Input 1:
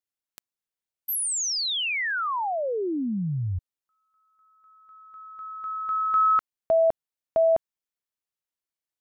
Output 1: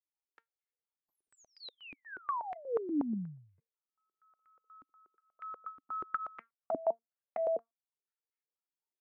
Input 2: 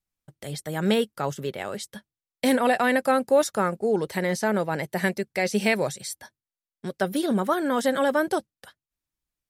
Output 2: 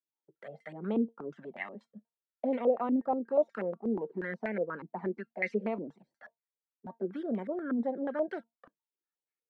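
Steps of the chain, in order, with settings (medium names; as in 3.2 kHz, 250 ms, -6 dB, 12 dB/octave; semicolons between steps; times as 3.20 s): steep high-pass 180 Hz 36 dB/octave; in parallel at -2 dB: compression 16:1, threshold -29 dBFS; on the sum: feedback comb 230 Hz, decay 0.17 s, harmonics all, mix 50%; touch-sensitive flanger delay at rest 2.3 ms, full sweep at -20.5 dBFS; step-sequenced low-pass 8.3 Hz 280–2100 Hz; trim -8 dB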